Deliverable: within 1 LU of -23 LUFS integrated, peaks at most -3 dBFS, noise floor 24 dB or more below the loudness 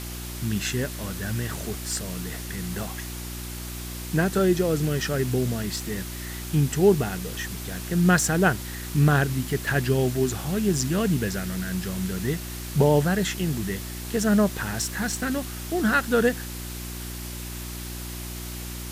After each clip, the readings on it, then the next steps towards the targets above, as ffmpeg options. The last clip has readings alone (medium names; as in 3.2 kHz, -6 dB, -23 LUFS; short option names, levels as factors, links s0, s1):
hum 60 Hz; highest harmonic 360 Hz; hum level -34 dBFS; noise floor -35 dBFS; noise floor target -50 dBFS; loudness -26.0 LUFS; peak level -7.5 dBFS; loudness target -23.0 LUFS
-> -af "bandreject=f=60:t=h:w=4,bandreject=f=120:t=h:w=4,bandreject=f=180:t=h:w=4,bandreject=f=240:t=h:w=4,bandreject=f=300:t=h:w=4,bandreject=f=360:t=h:w=4"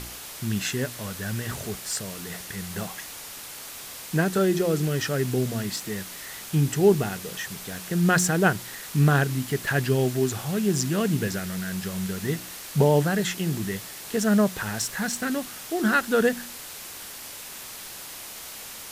hum not found; noise floor -40 dBFS; noise floor target -50 dBFS
-> -af "afftdn=nr=10:nf=-40"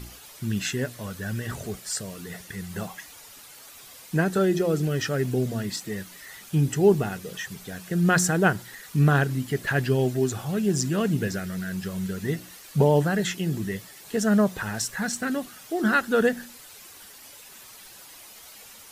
noise floor -47 dBFS; noise floor target -50 dBFS
-> -af "afftdn=nr=6:nf=-47"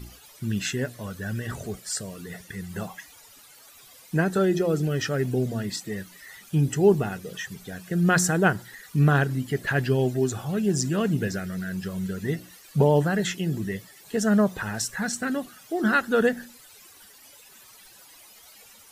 noise floor -51 dBFS; loudness -25.5 LUFS; peak level -7.0 dBFS; loudness target -23.0 LUFS
-> -af "volume=1.33"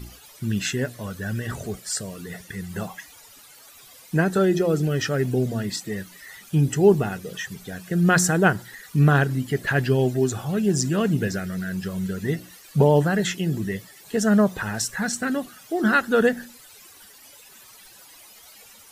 loudness -23.0 LUFS; peak level -4.5 dBFS; noise floor -49 dBFS